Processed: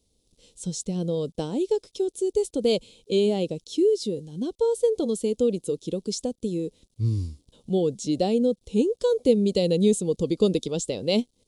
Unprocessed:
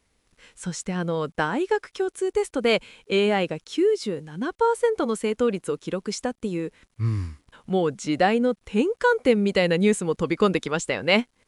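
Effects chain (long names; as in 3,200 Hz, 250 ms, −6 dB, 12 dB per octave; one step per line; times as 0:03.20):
drawn EQ curve 500 Hz 0 dB, 1,700 Hz −29 dB, 3,600 Hz +1 dB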